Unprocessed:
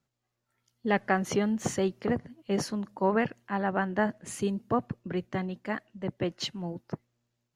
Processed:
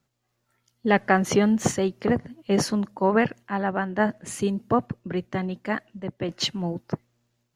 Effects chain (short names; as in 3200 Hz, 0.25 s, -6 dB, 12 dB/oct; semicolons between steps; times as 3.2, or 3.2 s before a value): random-step tremolo; gain +8 dB